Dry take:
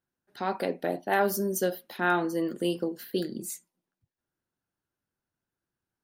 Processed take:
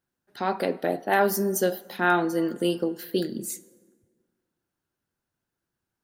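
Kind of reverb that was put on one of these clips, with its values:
dense smooth reverb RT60 1.8 s, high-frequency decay 0.55×, pre-delay 0 ms, DRR 18 dB
level +3.5 dB

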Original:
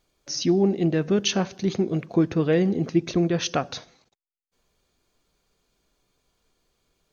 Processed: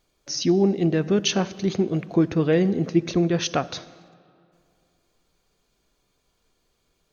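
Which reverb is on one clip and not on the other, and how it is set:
comb and all-pass reverb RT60 2.5 s, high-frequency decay 0.65×, pre-delay 20 ms, DRR 19 dB
level +1 dB

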